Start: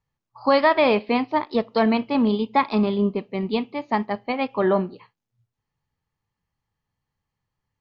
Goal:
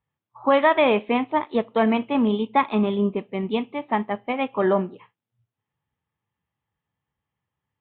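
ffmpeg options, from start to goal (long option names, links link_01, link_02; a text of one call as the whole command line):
ffmpeg -i in.wav -af "lowshelf=frequency=86:gain=-6.5,aresample=8000,aresample=44100" -ar 32000 -c:a libvorbis -b:a 64k out.ogg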